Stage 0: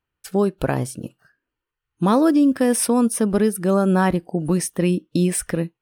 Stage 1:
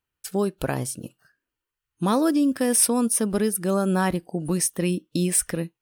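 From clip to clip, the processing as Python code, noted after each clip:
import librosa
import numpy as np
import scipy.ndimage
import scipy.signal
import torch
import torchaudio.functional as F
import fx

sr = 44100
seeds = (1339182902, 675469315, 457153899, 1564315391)

y = fx.high_shelf(x, sr, hz=3500.0, db=9.5)
y = y * librosa.db_to_amplitude(-5.0)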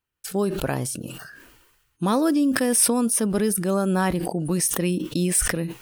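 y = fx.sustainer(x, sr, db_per_s=43.0)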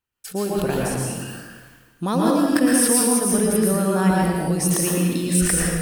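y = fx.rev_plate(x, sr, seeds[0], rt60_s=1.3, hf_ratio=0.8, predelay_ms=100, drr_db=-3.5)
y = y * librosa.db_to_amplitude(-2.0)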